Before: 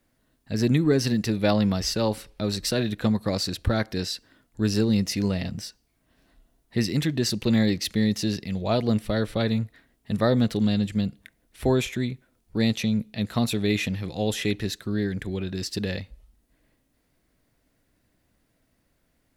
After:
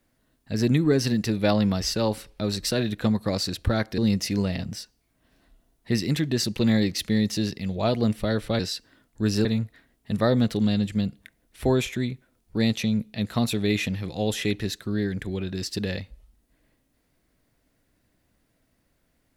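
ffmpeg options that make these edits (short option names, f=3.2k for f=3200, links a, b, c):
-filter_complex "[0:a]asplit=4[a][b][c][d];[a]atrim=end=3.982[e];[b]atrim=start=4.838:end=9.452[f];[c]atrim=start=3.978:end=4.842[g];[d]atrim=start=9.448[h];[e][f]acrossfade=d=0.004:c1=hsin:c2=hsin[i];[i][g]acrossfade=d=0.004:c1=hsin:c2=hsin[j];[j][h]acrossfade=d=0.004:c1=hsin:c2=hsin"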